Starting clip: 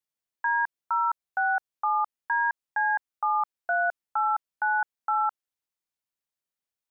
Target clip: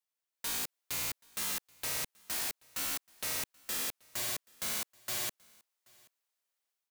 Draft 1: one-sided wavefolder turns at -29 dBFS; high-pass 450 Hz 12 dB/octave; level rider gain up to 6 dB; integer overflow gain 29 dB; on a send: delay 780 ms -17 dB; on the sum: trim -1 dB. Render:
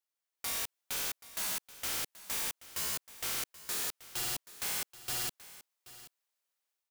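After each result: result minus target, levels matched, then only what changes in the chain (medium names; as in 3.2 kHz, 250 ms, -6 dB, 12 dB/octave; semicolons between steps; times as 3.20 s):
one-sided wavefolder: distortion -13 dB; echo-to-direct +10 dB
change: one-sided wavefolder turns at -39 dBFS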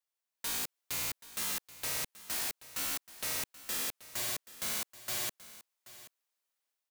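echo-to-direct +10 dB
change: delay 780 ms -27 dB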